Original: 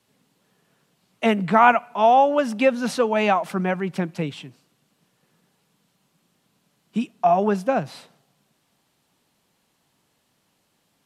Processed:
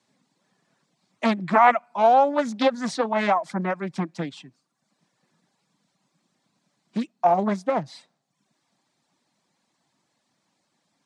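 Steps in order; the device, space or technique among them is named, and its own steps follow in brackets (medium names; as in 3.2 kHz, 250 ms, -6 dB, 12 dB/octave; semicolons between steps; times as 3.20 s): reverb removal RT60 0.69 s; full-range speaker at full volume (loudspeaker Doppler distortion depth 0.61 ms; cabinet simulation 160–8200 Hz, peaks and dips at 440 Hz -8 dB, 1.4 kHz -3 dB, 2.9 kHz -8 dB)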